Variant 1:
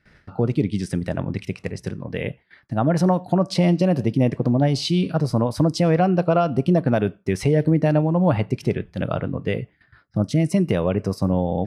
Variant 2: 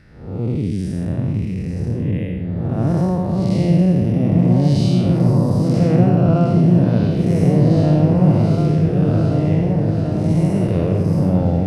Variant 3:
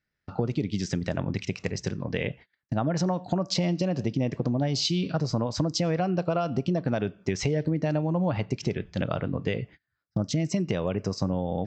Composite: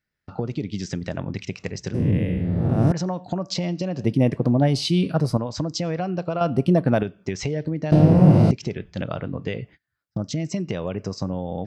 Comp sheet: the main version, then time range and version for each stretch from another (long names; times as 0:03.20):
3
0:01.94–0:02.92: punch in from 2
0:04.04–0:05.37: punch in from 1
0:06.41–0:07.03: punch in from 1
0:07.92–0:08.51: punch in from 2